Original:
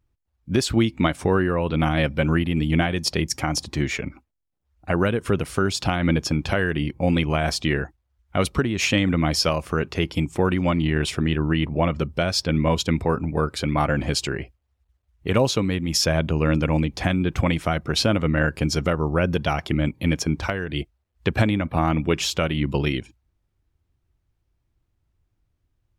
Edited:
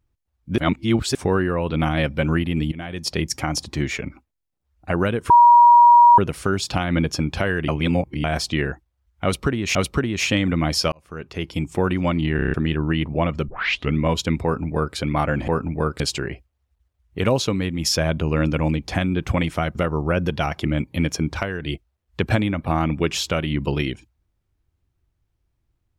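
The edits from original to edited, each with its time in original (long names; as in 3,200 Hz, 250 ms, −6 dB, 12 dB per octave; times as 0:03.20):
0:00.58–0:01.15: reverse
0:02.72–0:03.19: fade in, from −22.5 dB
0:05.30: insert tone 955 Hz −7 dBFS 0.88 s
0:06.80–0:07.36: reverse
0:08.36–0:08.87: repeat, 2 plays
0:09.53–0:10.34: fade in
0:10.97: stutter in place 0.03 s, 6 plays
0:12.09: tape start 0.46 s
0:13.05–0:13.57: duplicate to 0:14.09
0:17.84–0:18.82: remove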